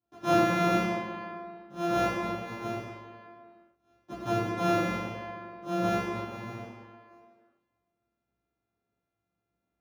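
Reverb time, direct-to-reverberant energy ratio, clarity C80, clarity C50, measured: not exponential, -12.5 dB, 1.0 dB, -1.0 dB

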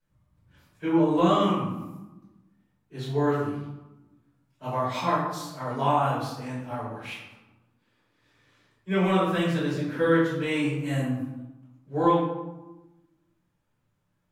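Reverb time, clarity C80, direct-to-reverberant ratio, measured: 1.1 s, 4.0 dB, -12.0 dB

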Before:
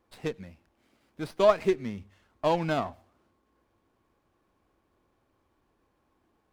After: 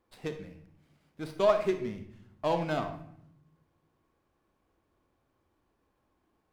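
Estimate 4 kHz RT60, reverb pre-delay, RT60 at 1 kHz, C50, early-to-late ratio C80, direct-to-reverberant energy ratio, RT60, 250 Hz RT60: 0.50 s, 36 ms, 0.65 s, 9.0 dB, 13.0 dB, 7.5 dB, 0.70 s, 1.1 s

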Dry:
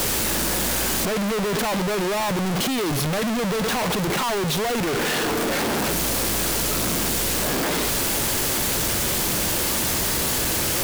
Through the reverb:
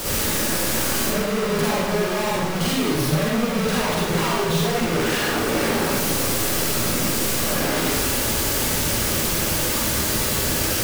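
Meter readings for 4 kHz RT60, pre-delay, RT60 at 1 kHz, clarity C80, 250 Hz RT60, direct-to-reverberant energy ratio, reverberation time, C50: 0.70 s, 39 ms, 0.90 s, 1.5 dB, 1.0 s, -7.0 dB, 0.95 s, -3.0 dB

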